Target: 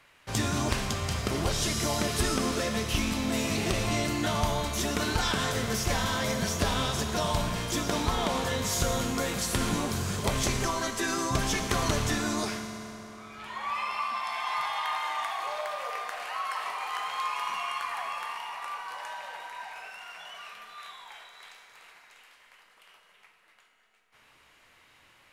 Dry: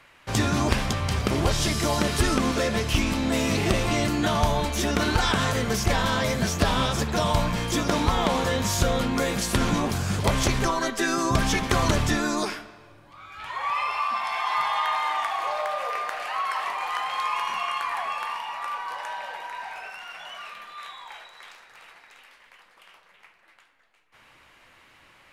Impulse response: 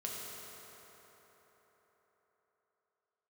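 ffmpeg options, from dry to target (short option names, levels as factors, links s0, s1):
-filter_complex "[0:a]asplit=2[s0][s1];[s1]highshelf=f=2800:g=12[s2];[1:a]atrim=start_sample=2205[s3];[s2][s3]afir=irnorm=-1:irlink=0,volume=0.473[s4];[s0][s4]amix=inputs=2:normalize=0,volume=0.376"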